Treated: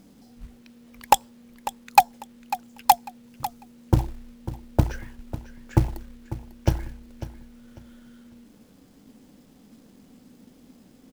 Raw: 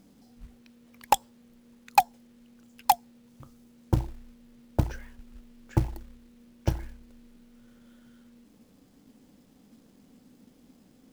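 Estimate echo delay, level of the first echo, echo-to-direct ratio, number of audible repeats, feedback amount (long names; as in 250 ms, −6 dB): 547 ms, −14.0 dB, −13.5 dB, 2, 25%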